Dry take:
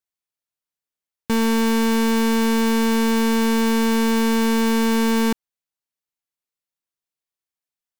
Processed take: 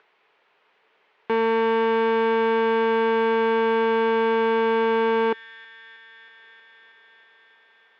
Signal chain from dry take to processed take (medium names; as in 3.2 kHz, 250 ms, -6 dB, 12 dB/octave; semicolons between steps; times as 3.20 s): bass shelf 410 Hz -8 dB; upward compressor, threshold -28 dBFS; cabinet simulation 250–2700 Hz, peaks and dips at 270 Hz -4 dB, 430 Hz +10 dB, 910 Hz +4 dB; feedback echo behind a high-pass 318 ms, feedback 79%, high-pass 1.9 kHz, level -12.5 dB